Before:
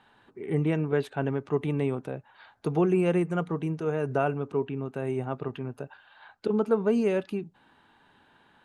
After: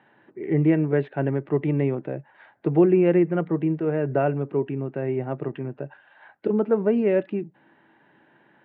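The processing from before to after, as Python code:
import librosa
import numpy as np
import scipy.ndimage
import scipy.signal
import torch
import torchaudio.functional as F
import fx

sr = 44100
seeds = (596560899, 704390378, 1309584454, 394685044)

y = fx.cabinet(x, sr, low_hz=130.0, low_slope=12, high_hz=2800.0, hz=(140.0, 200.0, 330.0, 580.0, 1200.0, 1900.0), db=(8, 3, 10, 7, -4, 7))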